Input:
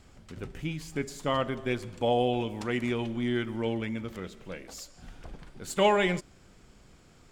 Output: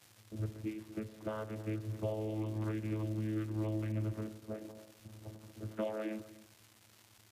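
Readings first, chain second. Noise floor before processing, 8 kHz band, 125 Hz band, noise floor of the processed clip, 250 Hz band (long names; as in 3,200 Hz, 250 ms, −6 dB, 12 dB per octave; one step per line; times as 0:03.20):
−57 dBFS, −14.5 dB, −1.0 dB, −64 dBFS, −7.0 dB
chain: notch filter 820 Hz, Q 12
noise gate −47 dBFS, range −12 dB
low-pass that shuts in the quiet parts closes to 410 Hz, open at −26.5 dBFS
parametric band 220 Hz −12.5 dB 0.29 octaves
comb filter 3.4 ms, depth 63%
downward compressor 4 to 1, threshold −39 dBFS, peak gain reduction 18 dB
slap from a distant wall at 43 metres, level −17 dB
channel vocoder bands 16, saw 108 Hz
high-frequency loss of the air 200 metres
surface crackle 410 per second −52 dBFS
level +5 dB
Ogg Vorbis 48 kbit/s 44,100 Hz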